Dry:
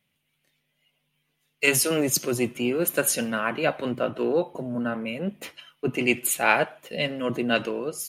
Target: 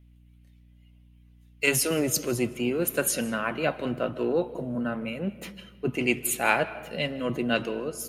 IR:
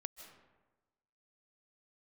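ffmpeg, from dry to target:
-filter_complex "[0:a]aeval=exprs='val(0)+0.002*(sin(2*PI*60*n/s)+sin(2*PI*2*60*n/s)/2+sin(2*PI*3*60*n/s)/3+sin(2*PI*4*60*n/s)/4+sin(2*PI*5*60*n/s)/5)':c=same,asplit=2[a][b];[1:a]atrim=start_sample=2205,lowshelf=f=240:g=9[c];[b][c]afir=irnorm=-1:irlink=0,volume=-1.5dB[d];[a][d]amix=inputs=2:normalize=0,volume=-6.5dB"

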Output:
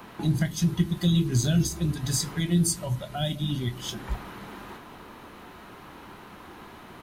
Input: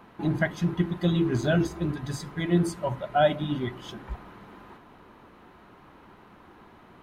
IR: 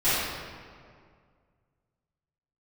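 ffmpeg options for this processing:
-filter_complex "[0:a]highshelf=f=3.5k:g=11.5,acrossover=split=200|4000[a][b][c];[b]acompressor=threshold=-42dB:ratio=5[d];[a][d][c]amix=inputs=3:normalize=0,asplit=2[e][f];[f]adelay=25,volume=-12dB[g];[e][g]amix=inputs=2:normalize=0,volume=5.5dB"

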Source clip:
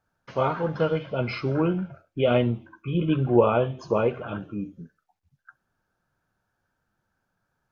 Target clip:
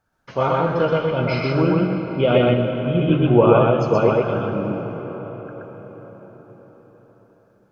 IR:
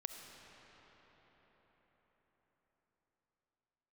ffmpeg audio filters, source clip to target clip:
-filter_complex "[0:a]asplit=2[a][b];[1:a]atrim=start_sample=2205,adelay=125[c];[b][c]afir=irnorm=-1:irlink=0,volume=3dB[d];[a][d]amix=inputs=2:normalize=0,volume=3.5dB"

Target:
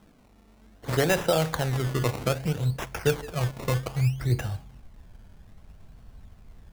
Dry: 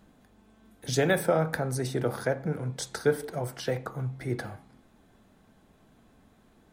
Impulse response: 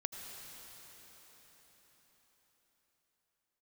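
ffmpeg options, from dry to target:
-af "asubboost=boost=11:cutoff=86,acrusher=samples=19:mix=1:aa=0.000001:lfo=1:lforange=19:lforate=0.62,volume=2dB"

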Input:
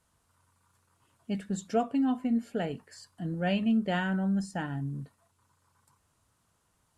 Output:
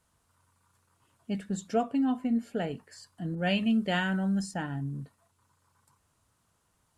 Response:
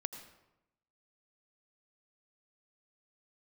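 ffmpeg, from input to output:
-filter_complex "[0:a]asettb=1/sr,asplit=3[a][b][c];[a]atrim=end=3.354[d];[b]atrim=start=3.35:end=4.54,asetpts=PTS-STARTPTS,afade=t=in:d=0.004:c=qsin,afade=t=out:st=1.186:d=0.004:c=qsin,adynamicequalizer=threshold=0.00562:dfrequency=1700:dqfactor=0.7:tfrequency=1700:tqfactor=0.7:attack=5:release=100:ratio=0.375:range=3:mode=boostabove:tftype=highshelf[e];[c]atrim=start=4.536[f];[d][e]acrossfade=d=0.004:c1=hsin:c2=qsin[g];[g][f]acrossfade=d=0.004:c1=qsin:c2=hsin"

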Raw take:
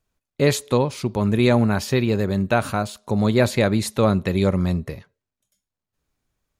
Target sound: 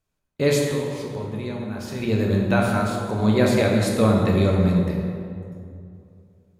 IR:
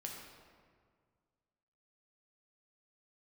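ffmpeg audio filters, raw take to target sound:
-filter_complex "[0:a]asettb=1/sr,asplit=3[a][b][c];[a]atrim=end=0.664[d];[b]atrim=start=0.66:end=2,asetpts=PTS-STARTPTS,afade=t=in:d=0.004:c=qsin,afade=t=out:st=1.336:d=0.004:c=qsin,acompressor=threshold=-30dB:ratio=4[e];[c]atrim=start=1.996[f];[d][e]acrossfade=d=0.004:c1=hsin:c2=qsin[g];[g][f]acrossfade=d=0.004:c1=qsin:c2=hsin[h];[1:a]atrim=start_sample=2205,asetrate=32634,aresample=44100[i];[h][i]afir=irnorm=-1:irlink=0"

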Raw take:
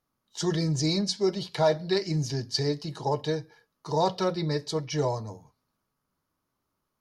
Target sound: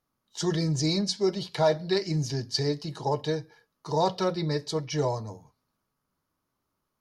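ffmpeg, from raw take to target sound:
-af anull

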